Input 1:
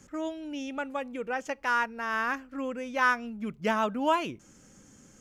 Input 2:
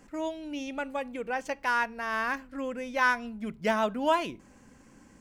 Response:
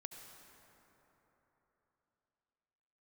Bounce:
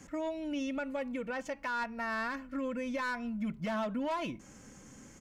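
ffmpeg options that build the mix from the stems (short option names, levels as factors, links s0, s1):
-filter_complex "[0:a]equalizer=f=2100:t=o:w=0.3:g=5,acompressor=threshold=0.0158:ratio=6,volume=1.06[s0];[1:a]highshelf=f=5700:g=-11.5,asoftclip=type=tanh:threshold=0.0501,volume=-1,adelay=2.4,volume=0.794[s1];[s0][s1]amix=inputs=2:normalize=0,alimiter=level_in=1.5:limit=0.0631:level=0:latency=1:release=80,volume=0.668"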